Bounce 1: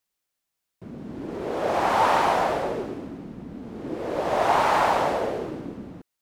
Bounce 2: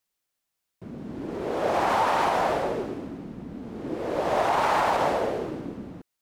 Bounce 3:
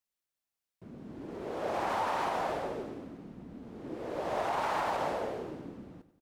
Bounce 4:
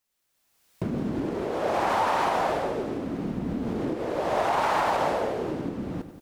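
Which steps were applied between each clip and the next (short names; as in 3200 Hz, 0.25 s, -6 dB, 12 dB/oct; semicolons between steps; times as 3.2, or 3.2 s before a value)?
limiter -14 dBFS, peak gain reduction 5.5 dB
feedback echo 93 ms, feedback 54%, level -15 dB; gain -9 dB
recorder AGC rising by 25 dB/s; gain +7.5 dB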